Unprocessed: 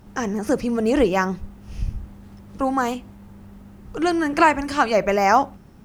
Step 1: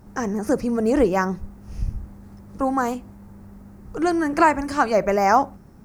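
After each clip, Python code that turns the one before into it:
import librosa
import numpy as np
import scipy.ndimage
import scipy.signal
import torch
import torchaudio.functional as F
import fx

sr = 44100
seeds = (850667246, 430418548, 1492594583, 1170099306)

y = fx.peak_eq(x, sr, hz=3100.0, db=-10.5, octaves=0.87)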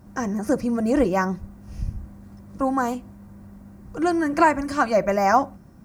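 y = fx.notch_comb(x, sr, f0_hz=430.0)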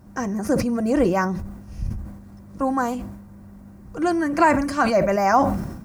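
y = fx.sustainer(x, sr, db_per_s=55.0)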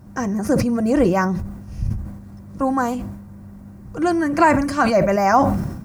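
y = fx.peak_eq(x, sr, hz=120.0, db=5.5, octaves=1.0)
y = y * librosa.db_to_amplitude(2.0)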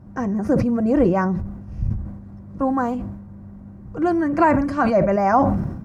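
y = fx.lowpass(x, sr, hz=1200.0, slope=6)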